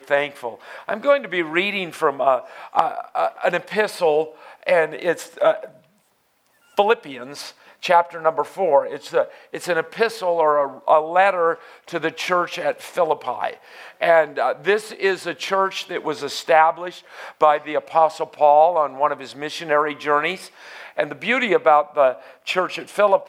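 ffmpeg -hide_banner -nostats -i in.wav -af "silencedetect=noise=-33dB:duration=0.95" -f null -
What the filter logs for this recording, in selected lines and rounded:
silence_start: 5.67
silence_end: 6.77 | silence_duration: 1.11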